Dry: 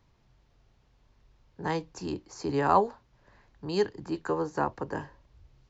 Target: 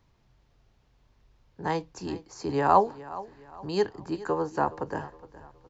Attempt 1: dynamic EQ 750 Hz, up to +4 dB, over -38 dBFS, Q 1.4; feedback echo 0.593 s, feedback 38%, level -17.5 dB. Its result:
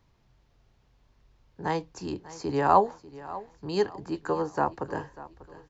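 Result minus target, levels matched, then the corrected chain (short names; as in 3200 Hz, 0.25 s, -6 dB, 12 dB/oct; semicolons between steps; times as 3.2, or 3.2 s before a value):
echo 0.177 s late
dynamic EQ 750 Hz, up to +4 dB, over -38 dBFS, Q 1.4; feedback echo 0.416 s, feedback 38%, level -17.5 dB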